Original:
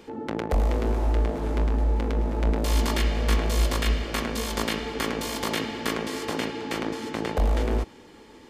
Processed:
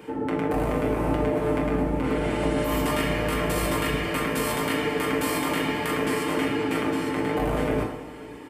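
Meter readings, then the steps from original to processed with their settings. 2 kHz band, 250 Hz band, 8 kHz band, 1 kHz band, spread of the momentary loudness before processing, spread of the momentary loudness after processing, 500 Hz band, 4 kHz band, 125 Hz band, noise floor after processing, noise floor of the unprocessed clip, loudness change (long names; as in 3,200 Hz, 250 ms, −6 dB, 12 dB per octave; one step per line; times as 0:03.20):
+4.0 dB, +5.0 dB, 0.0 dB, +4.0 dB, 6 LU, 2 LU, +5.0 dB, −1.0 dB, −3.0 dB, −39 dBFS, −49 dBFS, +1.5 dB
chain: sub-octave generator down 2 octaves, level −1 dB
high-pass filter 130 Hz 12 dB per octave
healed spectral selection 0:02.06–0:02.77, 1,300–11,000 Hz both
flat-topped bell 4,900 Hz −9.5 dB 1.2 octaves
comb filter 6.6 ms, depth 55%
brickwall limiter −21 dBFS, peak gain reduction 8.5 dB
single-tap delay 531 ms −21 dB
dense smooth reverb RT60 0.88 s, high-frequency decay 0.8×, DRR 1 dB
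level +3.5 dB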